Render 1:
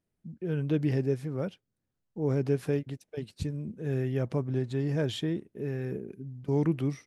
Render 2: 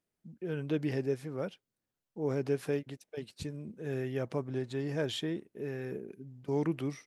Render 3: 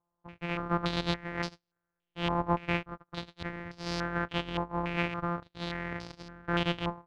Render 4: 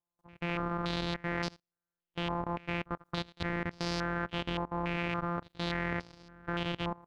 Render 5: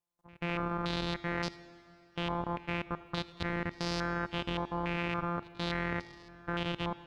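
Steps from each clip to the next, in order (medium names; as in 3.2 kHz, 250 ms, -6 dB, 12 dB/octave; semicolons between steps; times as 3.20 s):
bass shelf 210 Hz -12 dB
sorted samples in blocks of 256 samples; step-sequenced low-pass 3.5 Hz 990–4900 Hz
level held to a coarse grid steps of 21 dB; trim +8.5 dB
plate-style reverb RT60 3 s, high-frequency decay 0.9×, DRR 16 dB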